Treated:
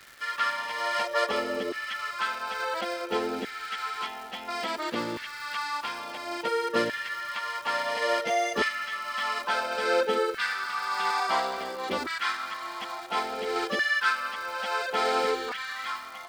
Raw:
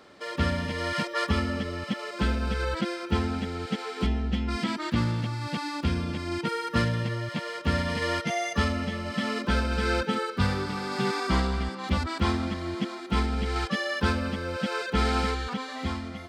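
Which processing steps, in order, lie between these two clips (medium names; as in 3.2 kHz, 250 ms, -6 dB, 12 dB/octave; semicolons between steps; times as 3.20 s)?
LFO high-pass saw down 0.58 Hz 370–1800 Hz; crackle 530 per s -39 dBFS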